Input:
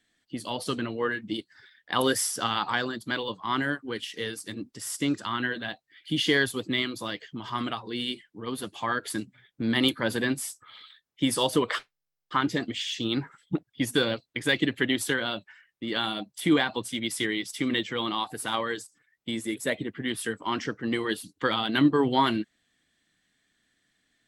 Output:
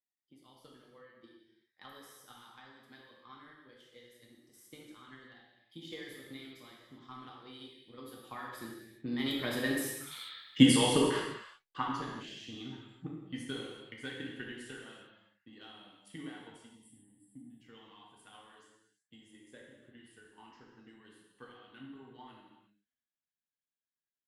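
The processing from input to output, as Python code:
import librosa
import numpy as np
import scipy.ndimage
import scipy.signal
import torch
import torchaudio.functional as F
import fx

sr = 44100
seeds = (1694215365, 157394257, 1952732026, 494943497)

y = fx.doppler_pass(x, sr, speed_mps=20, closest_m=3.0, pass_at_s=10.33)
y = fx.spec_box(y, sr, start_s=16.66, length_s=0.95, low_hz=310.0, high_hz=7500.0, gain_db=-29)
y = fx.transient(y, sr, attack_db=10, sustain_db=6)
y = fx.rev_gated(y, sr, seeds[0], gate_ms=410, shape='falling', drr_db=-3.0)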